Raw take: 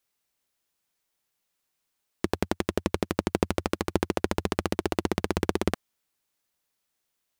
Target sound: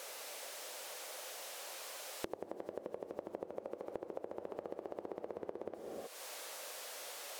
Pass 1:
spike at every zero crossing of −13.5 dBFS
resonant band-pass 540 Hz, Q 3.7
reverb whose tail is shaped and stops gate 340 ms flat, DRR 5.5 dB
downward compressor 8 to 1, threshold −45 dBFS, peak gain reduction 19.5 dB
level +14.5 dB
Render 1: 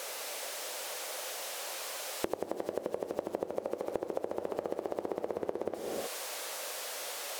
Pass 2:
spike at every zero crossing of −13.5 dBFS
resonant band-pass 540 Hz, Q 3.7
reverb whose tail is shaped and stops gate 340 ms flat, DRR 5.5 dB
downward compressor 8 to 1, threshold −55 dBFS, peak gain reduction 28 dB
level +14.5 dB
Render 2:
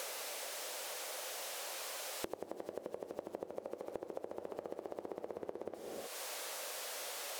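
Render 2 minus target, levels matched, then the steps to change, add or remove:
spike at every zero crossing: distortion +7 dB
change: spike at every zero crossing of −21 dBFS

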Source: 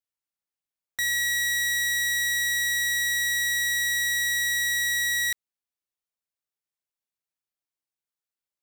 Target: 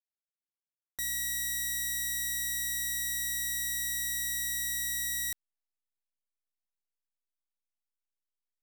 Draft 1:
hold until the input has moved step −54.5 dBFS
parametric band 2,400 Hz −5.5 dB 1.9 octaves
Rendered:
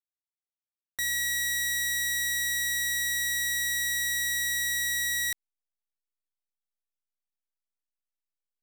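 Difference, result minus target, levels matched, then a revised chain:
2,000 Hz band +5.5 dB
hold until the input has moved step −54.5 dBFS
parametric band 2,400 Hz −17 dB 1.9 octaves

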